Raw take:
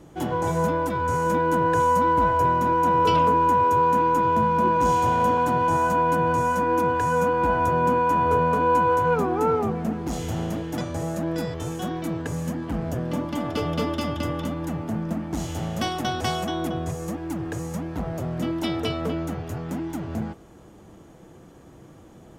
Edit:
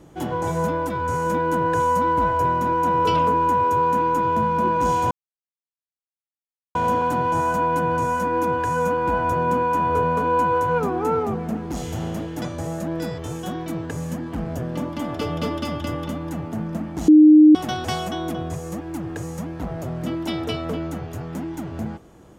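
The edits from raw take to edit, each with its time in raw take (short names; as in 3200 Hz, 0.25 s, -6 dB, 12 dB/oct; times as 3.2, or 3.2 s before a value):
5.11 insert silence 1.64 s
15.44–15.91 bleep 306 Hz -6.5 dBFS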